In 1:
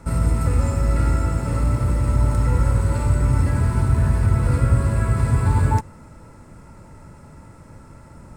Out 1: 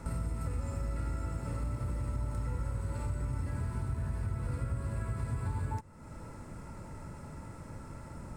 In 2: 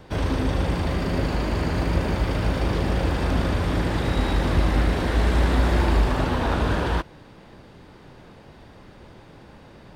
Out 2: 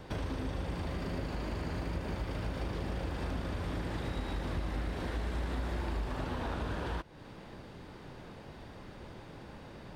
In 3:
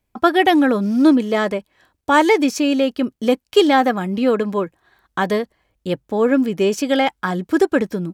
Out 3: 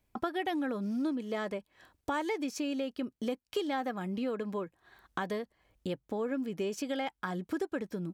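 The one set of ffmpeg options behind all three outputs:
-af "acompressor=threshold=0.0178:ratio=3,volume=0.794"

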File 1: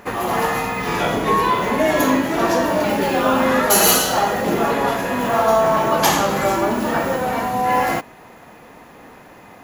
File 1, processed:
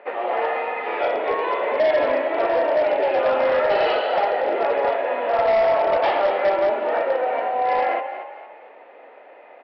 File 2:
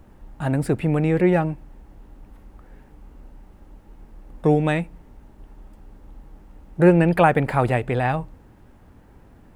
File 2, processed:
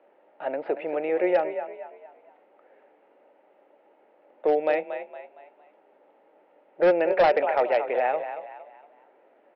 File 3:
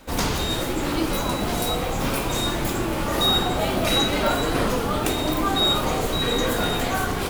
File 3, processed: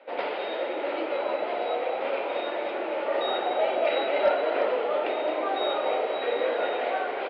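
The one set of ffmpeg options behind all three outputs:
-filter_complex "[0:a]highpass=f=420:w=0.5412,highpass=f=420:w=1.3066,equalizer=f=580:t=q:w=4:g=7,equalizer=f=1100:t=q:w=4:g=-9,equalizer=f=1600:t=q:w=4:g=-5,lowpass=f=2600:w=0.5412,lowpass=f=2600:w=1.3066,asplit=5[s0][s1][s2][s3][s4];[s1]adelay=231,afreqshift=30,volume=0.316[s5];[s2]adelay=462,afreqshift=60,volume=0.12[s6];[s3]adelay=693,afreqshift=90,volume=0.0457[s7];[s4]adelay=924,afreqshift=120,volume=0.0174[s8];[s0][s5][s6][s7][s8]amix=inputs=5:normalize=0,aresample=11025,asoftclip=type=hard:threshold=0.237,aresample=44100,volume=0.841"

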